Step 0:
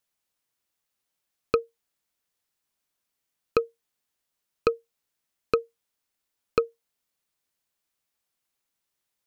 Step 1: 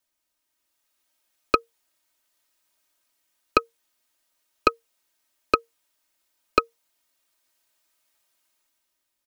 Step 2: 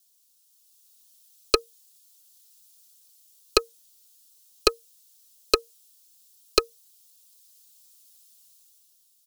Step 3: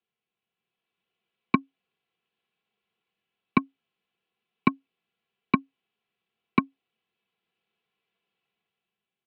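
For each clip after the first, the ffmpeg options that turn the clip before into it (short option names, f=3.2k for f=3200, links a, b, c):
-filter_complex "[0:a]aecho=1:1:3.2:0.85,acrossover=split=400[a][b];[b]dynaudnorm=f=170:g=9:m=8dB[c];[a][c]amix=inputs=2:normalize=0"
-af "aexciter=amount=10.5:drive=3.8:freq=3.1k,highpass=f=410:t=q:w=3.8,aeval=exprs='2.11*(cos(1*acos(clip(val(0)/2.11,-1,1)))-cos(1*PI/2))+0.106*(cos(8*acos(clip(val(0)/2.11,-1,1)))-cos(8*PI/2))':c=same,volume=-7dB"
-af "highpass=f=210:t=q:w=0.5412,highpass=f=210:t=q:w=1.307,lowpass=f=2.7k:t=q:w=0.5176,lowpass=f=2.7k:t=q:w=0.7071,lowpass=f=2.7k:t=q:w=1.932,afreqshift=-190"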